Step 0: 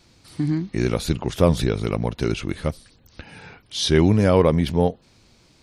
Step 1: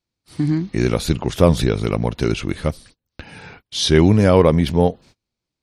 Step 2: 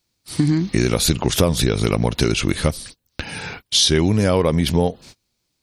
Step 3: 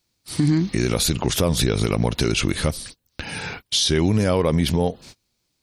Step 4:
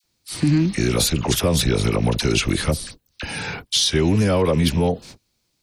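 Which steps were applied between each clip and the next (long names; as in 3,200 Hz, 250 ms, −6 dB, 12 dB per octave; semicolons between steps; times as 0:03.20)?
noise gate −46 dBFS, range −31 dB; level +3.5 dB
high-shelf EQ 3,500 Hz +10 dB; downward compressor 6 to 1, threshold −20 dBFS, peak gain reduction 12.5 dB; level +6.5 dB
brickwall limiter −10 dBFS, peak gain reduction 6 dB
loose part that buzzes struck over −21 dBFS, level −30 dBFS; in parallel at −10.5 dB: soft clipping −20 dBFS, distortion −9 dB; on the sum: all-pass dispersion lows, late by 40 ms, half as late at 1,100 Hz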